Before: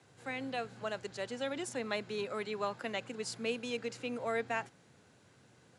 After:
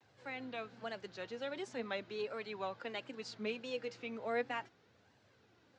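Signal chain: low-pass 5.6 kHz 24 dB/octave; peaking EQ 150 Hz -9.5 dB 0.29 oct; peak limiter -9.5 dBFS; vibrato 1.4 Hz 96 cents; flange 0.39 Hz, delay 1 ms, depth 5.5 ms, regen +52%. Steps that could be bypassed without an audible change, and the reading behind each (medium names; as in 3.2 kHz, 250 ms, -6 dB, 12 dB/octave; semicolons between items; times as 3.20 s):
peak limiter -9.5 dBFS: peak at its input -21.5 dBFS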